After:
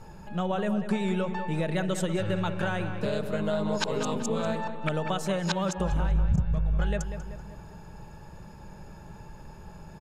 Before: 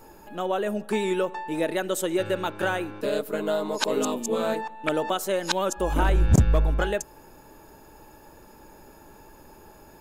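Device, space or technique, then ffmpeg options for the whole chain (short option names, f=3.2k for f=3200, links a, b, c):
jukebox: -filter_complex "[0:a]asettb=1/sr,asplit=3[a][b][c];[a]atrim=end=5.254[d];[b]atrim=start=5.25:end=5.92,asetpts=PTS-STARTPTS,afade=t=in:d=0.004:c=qsin,afade=t=out:st=0.666:d=0.004:c=qsin,highpass=52[e];[c]atrim=start=5.916[f];[d][e]acrossfade=d=0.004:c1=hsin:c2=qsin[g];[g][f]acrossfade=d=0.004:c1=qsin:c2=hsin,lowpass=7k,lowshelf=f=220:t=q:w=3:g=7.5,acompressor=threshold=-25dB:ratio=5,asplit=2[h][i];[i]adelay=192,lowpass=f=3k:p=1,volume=-9dB,asplit=2[j][k];[k]adelay=192,lowpass=f=3k:p=1,volume=0.53,asplit=2[l][m];[m]adelay=192,lowpass=f=3k:p=1,volume=0.53,asplit=2[n][o];[o]adelay=192,lowpass=f=3k:p=1,volume=0.53,asplit=2[p][q];[q]adelay=192,lowpass=f=3k:p=1,volume=0.53,asplit=2[r][s];[s]adelay=192,lowpass=f=3k:p=1,volume=0.53[t];[h][j][l][n][p][r][t]amix=inputs=7:normalize=0"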